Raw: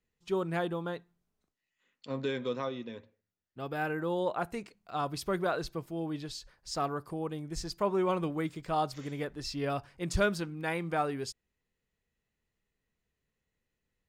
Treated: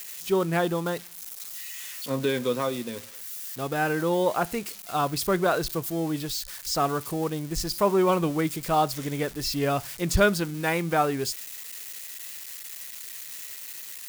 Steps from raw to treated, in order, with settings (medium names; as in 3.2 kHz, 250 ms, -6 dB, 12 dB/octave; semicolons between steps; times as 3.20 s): zero-crossing glitches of -35 dBFS; trim +7.5 dB